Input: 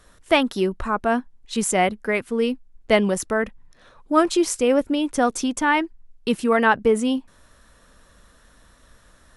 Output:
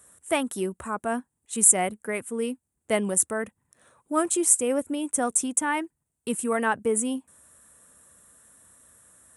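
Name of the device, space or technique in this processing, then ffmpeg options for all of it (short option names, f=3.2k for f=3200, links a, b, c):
budget condenser microphone: -af "highpass=f=76:w=0.5412,highpass=f=76:w=1.3066,highshelf=f=6.4k:t=q:w=3:g=11.5,volume=-7dB"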